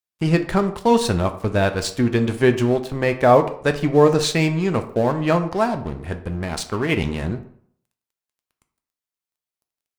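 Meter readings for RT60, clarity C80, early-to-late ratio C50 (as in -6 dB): 0.60 s, 15.5 dB, 12.5 dB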